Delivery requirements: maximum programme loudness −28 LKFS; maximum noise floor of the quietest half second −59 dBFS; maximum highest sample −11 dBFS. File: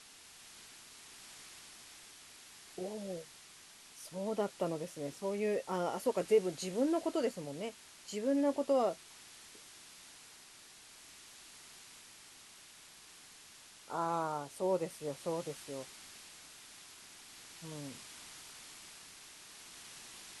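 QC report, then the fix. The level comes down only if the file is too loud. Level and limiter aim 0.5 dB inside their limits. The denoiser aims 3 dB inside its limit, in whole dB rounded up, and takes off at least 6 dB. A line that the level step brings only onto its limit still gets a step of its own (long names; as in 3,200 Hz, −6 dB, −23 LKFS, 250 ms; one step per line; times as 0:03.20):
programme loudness −37.0 LKFS: in spec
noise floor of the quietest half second −57 dBFS: out of spec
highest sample −18.0 dBFS: in spec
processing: broadband denoise 6 dB, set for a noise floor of −57 dBFS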